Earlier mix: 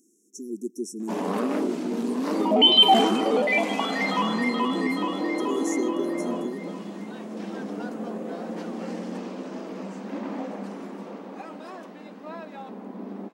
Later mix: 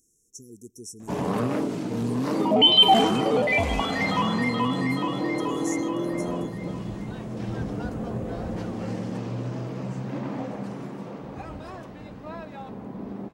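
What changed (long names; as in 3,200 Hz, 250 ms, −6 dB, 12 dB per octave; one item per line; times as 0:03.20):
speech: add low shelf with overshoot 450 Hz −8.5 dB, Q 3
master: remove linear-phase brick-wall high-pass 180 Hz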